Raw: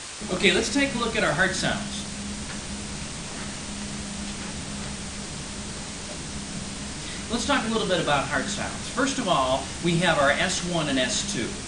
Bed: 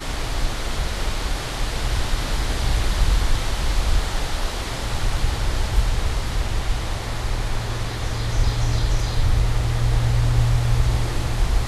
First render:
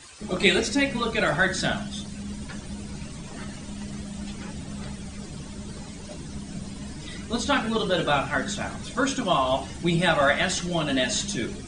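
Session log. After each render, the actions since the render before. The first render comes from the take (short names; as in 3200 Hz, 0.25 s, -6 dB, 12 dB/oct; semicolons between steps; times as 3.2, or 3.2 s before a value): denoiser 13 dB, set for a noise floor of -35 dBFS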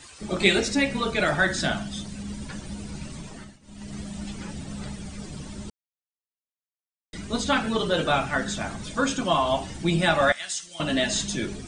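3.21–3.99 dip -20 dB, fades 0.38 s; 5.7–7.13 mute; 10.32–10.8 pre-emphasis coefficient 0.97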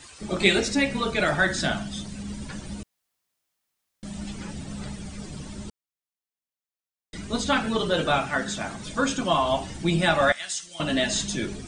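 2.83–4.03 room tone; 8.18–8.86 low shelf 82 Hz -11 dB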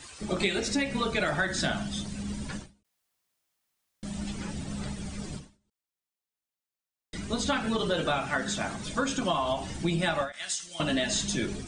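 compressor 6:1, threshold -24 dBFS, peak gain reduction 10.5 dB; ending taper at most 160 dB/s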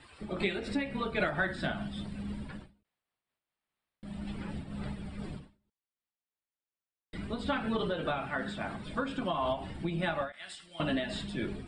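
running mean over 7 samples; noise-modulated level, depth 60%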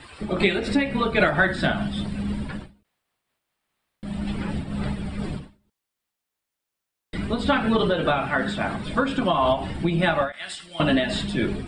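gain +11 dB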